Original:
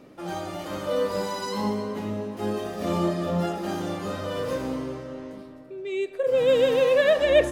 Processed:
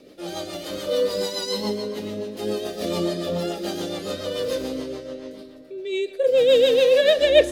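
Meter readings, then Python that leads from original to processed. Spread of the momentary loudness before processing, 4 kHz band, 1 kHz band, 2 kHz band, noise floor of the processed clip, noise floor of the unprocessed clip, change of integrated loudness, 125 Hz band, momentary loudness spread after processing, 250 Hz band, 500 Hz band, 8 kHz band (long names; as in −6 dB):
15 LU, +8.5 dB, −5.0 dB, +0.5 dB, −44 dBFS, −45 dBFS, +3.0 dB, −4.0 dB, 18 LU, −0.5 dB, +3.5 dB, +5.5 dB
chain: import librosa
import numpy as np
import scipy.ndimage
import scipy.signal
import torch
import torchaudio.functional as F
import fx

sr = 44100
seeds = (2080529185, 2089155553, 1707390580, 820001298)

y = fx.high_shelf(x, sr, hz=7700.0, db=9.5)
y = fx.rotary(y, sr, hz=7.0)
y = fx.graphic_eq_10(y, sr, hz=(125, 500, 1000, 4000), db=(-8, 6, -6, 10))
y = F.gain(torch.from_numpy(y), 1.5).numpy()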